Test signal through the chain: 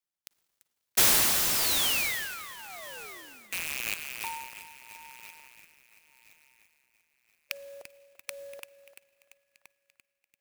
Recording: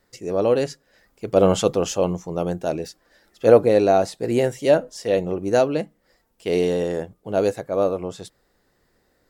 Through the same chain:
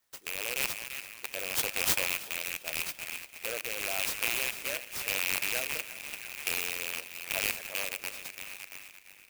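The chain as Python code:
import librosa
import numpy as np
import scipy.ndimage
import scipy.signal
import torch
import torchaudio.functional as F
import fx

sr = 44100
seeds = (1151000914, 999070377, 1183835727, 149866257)

y = fx.rattle_buzz(x, sr, strikes_db=-29.0, level_db=-9.0)
y = 10.0 ** (-6.5 / 20.0) * np.tanh(y / 10.0 ** (-6.5 / 20.0))
y = np.diff(y, prepend=0.0)
y = fx.echo_banded(y, sr, ms=341, feedback_pct=70, hz=2000.0, wet_db=-9)
y = fx.rotary(y, sr, hz=0.9)
y = fx.peak_eq(y, sr, hz=160.0, db=-11.5, octaves=1.8)
y = fx.rev_schroeder(y, sr, rt60_s=3.0, comb_ms=38, drr_db=16.5)
y = fx.hpss(y, sr, part='harmonic', gain_db=-7)
y = fx.clock_jitter(y, sr, seeds[0], jitter_ms=0.051)
y = y * 10.0 ** (6.5 / 20.0)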